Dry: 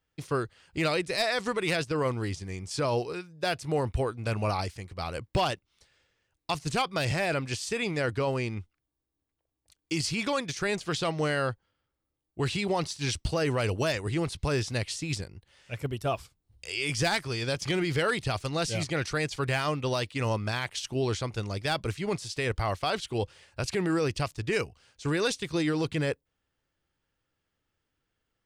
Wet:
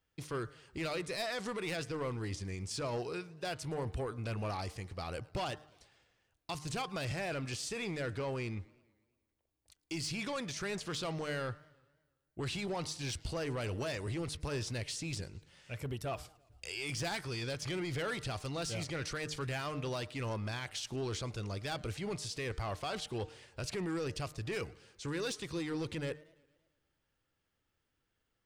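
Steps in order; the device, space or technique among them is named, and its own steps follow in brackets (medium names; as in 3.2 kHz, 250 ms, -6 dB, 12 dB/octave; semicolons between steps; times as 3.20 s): soft clipper into limiter (saturation -24 dBFS, distortion -15 dB; peak limiter -30 dBFS, peak gain reduction 5.5 dB); de-hum 151.7 Hz, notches 13; modulated delay 112 ms, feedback 58%, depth 217 cents, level -24 dB; trim -1.5 dB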